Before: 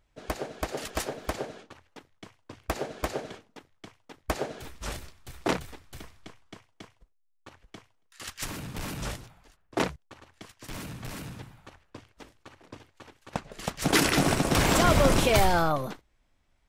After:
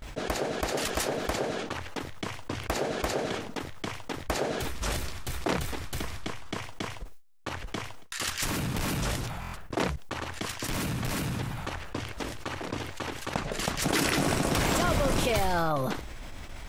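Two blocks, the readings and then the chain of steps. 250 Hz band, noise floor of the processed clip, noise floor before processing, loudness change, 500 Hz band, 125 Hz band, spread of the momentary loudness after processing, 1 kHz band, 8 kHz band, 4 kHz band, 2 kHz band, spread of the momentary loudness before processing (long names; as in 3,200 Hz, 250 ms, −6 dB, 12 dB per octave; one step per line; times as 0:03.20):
−0.5 dB, −42 dBFS, −69 dBFS, −3.0 dB, −1.0 dB, 0.0 dB, 12 LU, −1.0 dB, +0.5 dB, +0.5 dB, 0.0 dB, 21 LU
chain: noise gate with hold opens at −60 dBFS
buffer that repeats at 0:09.40, samples 1,024, times 5
envelope flattener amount 70%
level −6.5 dB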